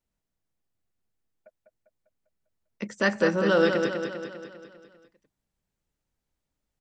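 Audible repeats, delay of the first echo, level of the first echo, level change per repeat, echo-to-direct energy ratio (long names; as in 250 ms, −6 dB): 6, 199 ms, −6.0 dB, −5.0 dB, −4.5 dB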